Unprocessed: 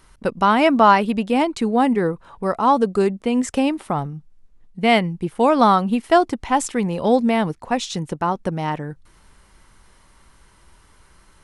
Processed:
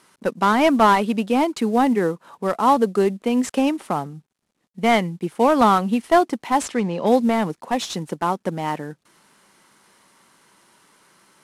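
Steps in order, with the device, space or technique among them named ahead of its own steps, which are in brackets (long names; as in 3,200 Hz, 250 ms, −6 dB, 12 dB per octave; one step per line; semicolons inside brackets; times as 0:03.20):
early wireless headset (high-pass filter 170 Hz 24 dB per octave; variable-slope delta modulation 64 kbit/s)
0:06.65–0:07.05: low-pass filter 9,600 Hz → 4,100 Hz 12 dB per octave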